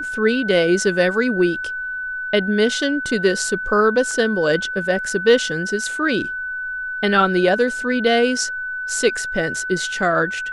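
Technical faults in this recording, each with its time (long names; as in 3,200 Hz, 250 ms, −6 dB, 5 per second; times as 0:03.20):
whistle 1,500 Hz −24 dBFS
0:04.11: drop-out 2.3 ms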